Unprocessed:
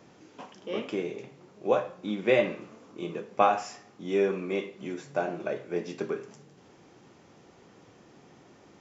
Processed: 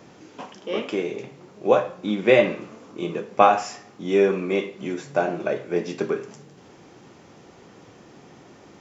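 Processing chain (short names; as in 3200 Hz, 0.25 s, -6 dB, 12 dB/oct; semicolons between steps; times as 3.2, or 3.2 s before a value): 0.58–1.12 low shelf 160 Hz -8.5 dB; gain +7 dB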